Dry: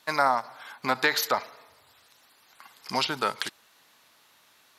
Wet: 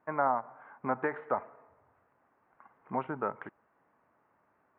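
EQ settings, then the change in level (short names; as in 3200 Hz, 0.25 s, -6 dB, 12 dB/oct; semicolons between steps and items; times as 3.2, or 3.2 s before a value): Gaussian blur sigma 6.3 samples; -2.0 dB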